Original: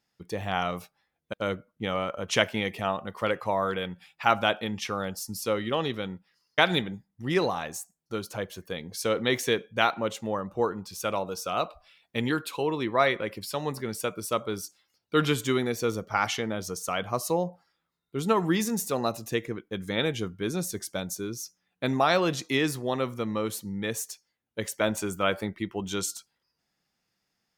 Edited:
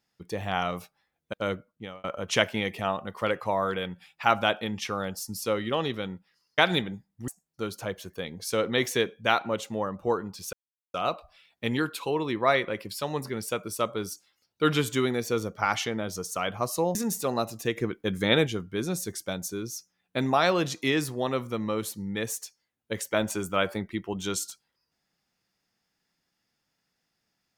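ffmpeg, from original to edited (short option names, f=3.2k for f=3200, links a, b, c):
-filter_complex "[0:a]asplit=8[a][b][c][d][e][f][g][h];[a]atrim=end=2.04,asetpts=PTS-STARTPTS,afade=t=out:st=1.55:d=0.49[i];[b]atrim=start=2.04:end=7.282,asetpts=PTS-STARTPTS,afade=t=in:d=0.004:c=hsin[j];[c]atrim=start=7.798:end=11.05,asetpts=PTS-STARTPTS,afade=t=out:st=3.248:d=0.004:c=hsin[k];[d]atrim=start=11.05:end=11.46,asetpts=PTS-STARTPTS,volume=0[l];[e]atrim=start=11.46:end=17.472,asetpts=PTS-STARTPTS,afade=t=in:d=0.004:c=hsin[m];[f]atrim=start=18.618:end=19.442[n];[g]atrim=start=19.438:end=20.142,asetpts=PTS-STARTPTS,volume=5dB[o];[h]atrim=start=20.138[p];[i][j]concat=n=2:v=0:a=1[q];[k][l][m]concat=n=3:v=0:a=1[r];[q][r]acrossfade=d=0.004:c1=hsin:c2=hsin[s];[s][n]acrossfade=d=0.004:c1=hsin:c2=hsin[t];[t][o]acrossfade=d=0.004:c1=hsin:c2=hsin[u];[u][p]acrossfade=d=0.004:c1=hsin:c2=hsin"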